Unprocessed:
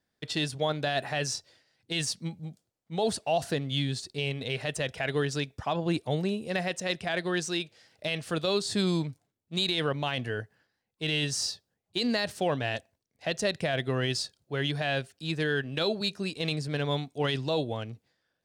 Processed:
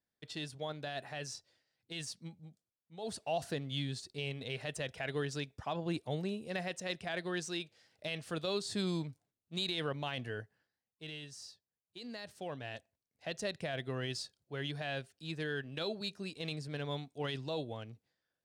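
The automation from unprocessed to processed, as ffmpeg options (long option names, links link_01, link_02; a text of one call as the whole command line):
ffmpeg -i in.wav -af "volume=9dB,afade=type=out:start_time=2.25:duration=0.72:silence=0.446684,afade=type=in:start_time=2.97:duration=0.25:silence=0.281838,afade=type=out:start_time=10.37:duration=0.88:silence=0.266073,afade=type=in:start_time=11.97:duration=1.36:silence=0.316228" out.wav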